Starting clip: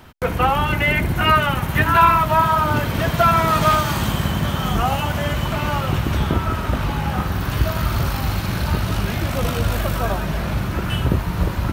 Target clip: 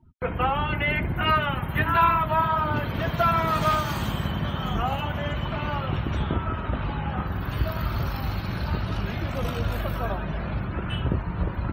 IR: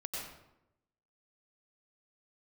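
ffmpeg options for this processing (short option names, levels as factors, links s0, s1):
-af "afftdn=nr=33:nf=-37,volume=0.473"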